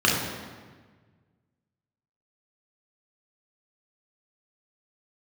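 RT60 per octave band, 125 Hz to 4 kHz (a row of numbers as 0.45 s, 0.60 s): 2.2 s, 1.7 s, 1.5 s, 1.4 s, 1.3 s, 1.1 s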